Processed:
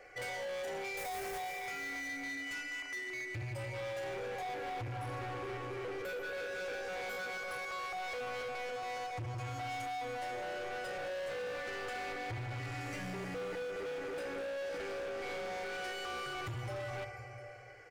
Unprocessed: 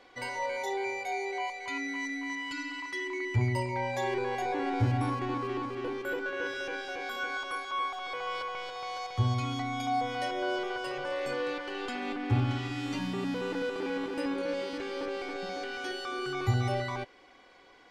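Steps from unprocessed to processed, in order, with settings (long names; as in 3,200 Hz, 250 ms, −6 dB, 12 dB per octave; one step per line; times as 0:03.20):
0:00.97–0:01.38: each half-wave held at its own peak
on a send: single-tap delay 702 ms −22.5 dB
on the sum: speech leveller 2 s
phaser with its sweep stopped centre 980 Hz, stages 6
downward compressor, threshold −35 dBFS, peak gain reduction 11 dB
notch filter 1,500 Hz, Q 30
feedback delay network reverb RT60 2.5 s, low-frequency decay 0.75×, high-frequency decay 0.85×, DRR 3 dB
hard clipping −40 dBFS, distortion −8 dB
level +2 dB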